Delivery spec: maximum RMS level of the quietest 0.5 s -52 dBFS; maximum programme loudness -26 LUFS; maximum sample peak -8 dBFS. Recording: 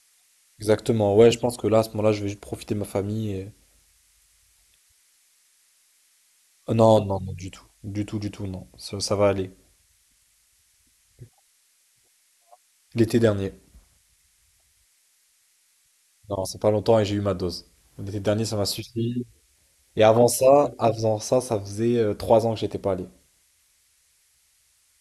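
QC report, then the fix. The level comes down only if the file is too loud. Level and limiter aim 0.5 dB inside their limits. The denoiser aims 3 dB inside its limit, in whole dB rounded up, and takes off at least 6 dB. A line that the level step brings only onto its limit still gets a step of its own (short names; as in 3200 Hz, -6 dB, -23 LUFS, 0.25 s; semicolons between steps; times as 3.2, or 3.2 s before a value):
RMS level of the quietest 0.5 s -64 dBFS: OK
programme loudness -23.0 LUFS: fail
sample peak -5.0 dBFS: fail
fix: gain -3.5 dB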